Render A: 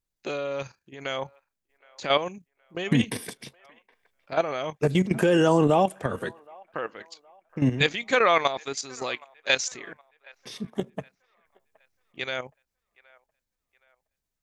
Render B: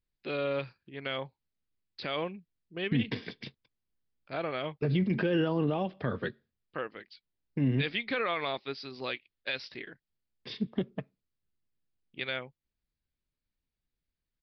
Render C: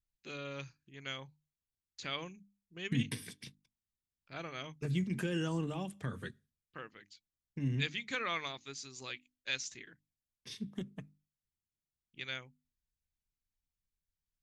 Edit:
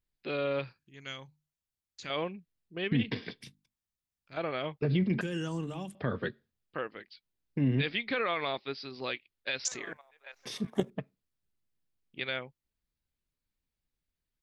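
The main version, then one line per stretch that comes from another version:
B
0.79–2.1 from C
3.41–4.37 from C
5.21–5.95 from C
9.65–10.9 from A

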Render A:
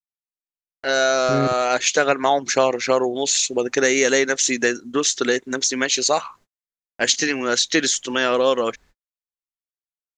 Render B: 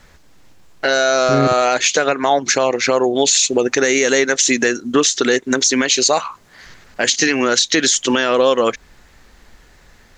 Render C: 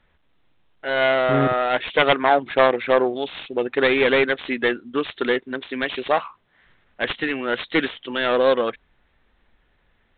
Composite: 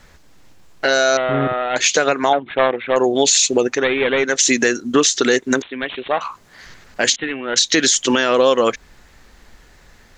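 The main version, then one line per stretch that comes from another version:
B
1.17–1.76 from C
2.33–2.96 from C
3.73–4.29 from C, crossfade 0.24 s
5.62–6.21 from C
7.16–7.56 from C
not used: A

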